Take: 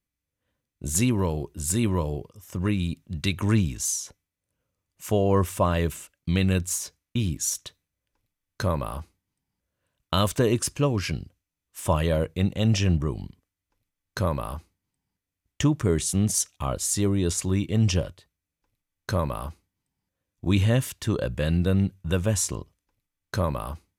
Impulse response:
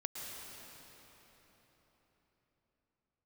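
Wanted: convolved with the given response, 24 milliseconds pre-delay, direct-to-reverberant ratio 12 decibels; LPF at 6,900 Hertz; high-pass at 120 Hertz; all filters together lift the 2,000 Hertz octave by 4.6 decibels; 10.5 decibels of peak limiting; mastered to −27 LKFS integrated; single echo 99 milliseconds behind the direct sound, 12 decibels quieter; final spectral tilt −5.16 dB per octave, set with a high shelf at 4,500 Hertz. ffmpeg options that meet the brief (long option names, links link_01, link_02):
-filter_complex "[0:a]highpass=120,lowpass=6900,equalizer=frequency=2000:width_type=o:gain=7.5,highshelf=frequency=4500:gain=-6,alimiter=limit=-16.5dB:level=0:latency=1,aecho=1:1:99:0.251,asplit=2[link_01][link_02];[1:a]atrim=start_sample=2205,adelay=24[link_03];[link_02][link_03]afir=irnorm=-1:irlink=0,volume=-12.5dB[link_04];[link_01][link_04]amix=inputs=2:normalize=0,volume=3dB"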